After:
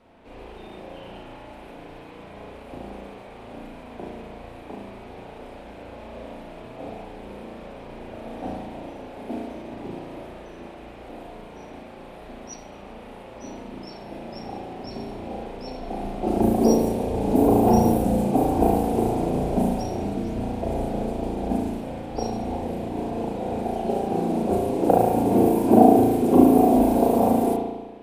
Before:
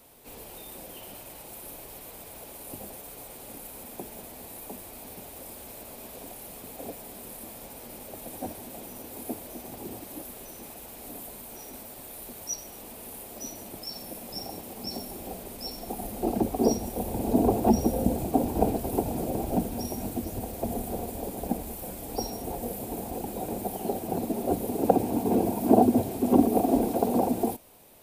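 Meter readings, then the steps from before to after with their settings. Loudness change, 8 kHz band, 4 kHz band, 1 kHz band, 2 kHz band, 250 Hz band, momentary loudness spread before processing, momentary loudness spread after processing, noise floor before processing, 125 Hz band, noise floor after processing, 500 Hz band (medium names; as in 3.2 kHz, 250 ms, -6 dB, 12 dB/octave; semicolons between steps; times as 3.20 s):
+7.5 dB, -5.0 dB, -1.5 dB, +7.0 dB, +5.5 dB, +6.0 dB, 17 LU, 23 LU, -45 dBFS, +6.0 dB, -42 dBFS, +6.5 dB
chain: spring tank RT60 1.2 s, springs 35 ms, chirp 50 ms, DRR -3.5 dB; level-controlled noise filter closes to 2.4 kHz, open at -16 dBFS; trim +1 dB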